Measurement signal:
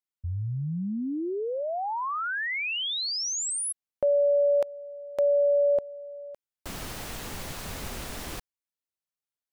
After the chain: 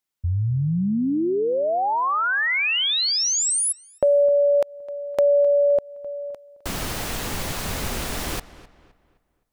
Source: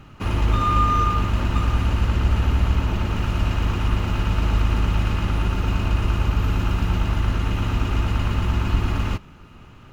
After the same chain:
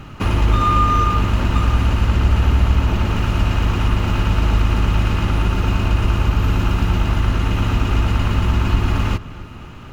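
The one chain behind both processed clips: in parallel at +2.5 dB: compression, threshold -28 dBFS; on the sum: filtered feedback delay 259 ms, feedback 38%, low-pass 3.4 kHz, level -17 dB; trim +1.5 dB

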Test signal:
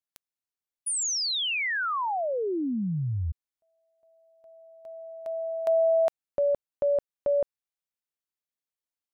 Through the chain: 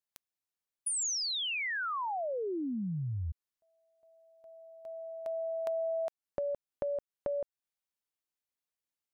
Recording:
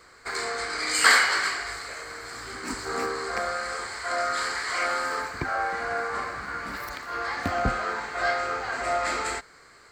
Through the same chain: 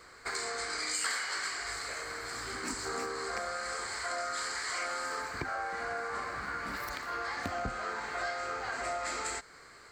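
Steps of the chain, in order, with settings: dynamic bell 7 kHz, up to +7 dB, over -45 dBFS, Q 1.1; compression 4:1, threshold -33 dBFS; trim -1 dB

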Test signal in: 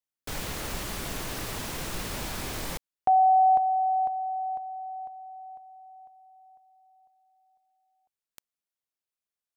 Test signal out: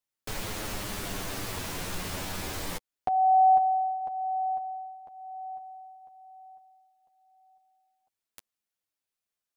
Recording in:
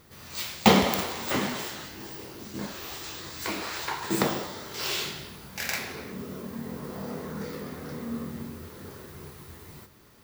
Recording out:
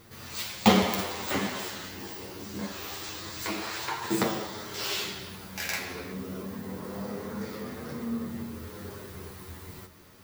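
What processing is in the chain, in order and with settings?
in parallel at -1 dB: compression, threshold -40 dBFS; on the sum: flange 0.25 Hz, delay 8.7 ms, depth 2.4 ms, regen +4%

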